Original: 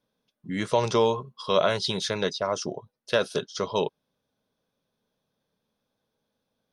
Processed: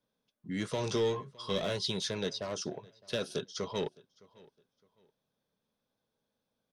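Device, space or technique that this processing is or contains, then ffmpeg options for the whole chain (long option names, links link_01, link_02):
one-band saturation: -filter_complex "[0:a]acrossover=split=410|2900[link_01][link_02][link_03];[link_02]asoftclip=type=tanh:threshold=-32.5dB[link_04];[link_01][link_04][link_03]amix=inputs=3:normalize=0,asettb=1/sr,asplit=3[link_05][link_06][link_07];[link_05]atrim=end=0.764[link_08];[link_06]atrim=start=0.76:end=1.76,asetpts=PTS-STARTPTS,afade=type=in:duration=0.004:curve=qsin,afade=type=out:start_time=0.996:duration=0.004:curve=qsin,asplit=2[link_09][link_10];[link_10]adelay=20,volume=-7.5dB[link_11];[link_09][link_11]amix=inputs=2:normalize=0,atrim=end_sample=44100[link_12];[link_07]atrim=start=1.756[link_13];[link_08][link_12]acrossfade=duration=0.004:curve1=hsin:curve2=qsin[link_14];[link_14][link_13]acrossfade=duration=0.004:curve1=qsin:curve2=hsin,asplit=2[link_15][link_16];[link_16]adelay=612,lowpass=frequency=4900:poles=1,volume=-23.5dB,asplit=2[link_17][link_18];[link_18]adelay=612,lowpass=frequency=4900:poles=1,volume=0.29[link_19];[link_15][link_17][link_19]amix=inputs=3:normalize=0,volume=-5dB"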